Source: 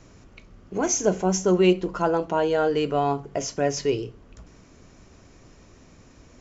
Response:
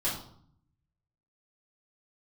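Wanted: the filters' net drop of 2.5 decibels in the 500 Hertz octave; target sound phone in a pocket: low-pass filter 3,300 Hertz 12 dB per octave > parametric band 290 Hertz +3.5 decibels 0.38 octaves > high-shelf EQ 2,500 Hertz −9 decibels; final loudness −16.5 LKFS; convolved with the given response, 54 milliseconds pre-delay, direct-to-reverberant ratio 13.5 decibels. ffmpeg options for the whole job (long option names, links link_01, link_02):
-filter_complex "[0:a]equalizer=frequency=500:width_type=o:gain=-3.5,asplit=2[link_01][link_02];[1:a]atrim=start_sample=2205,adelay=54[link_03];[link_02][link_03]afir=irnorm=-1:irlink=0,volume=-20.5dB[link_04];[link_01][link_04]amix=inputs=2:normalize=0,lowpass=3300,equalizer=frequency=290:width_type=o:width=0.38:gain=3.5,highshelf=frequency=2500:gain=-9,volume=8.5dB"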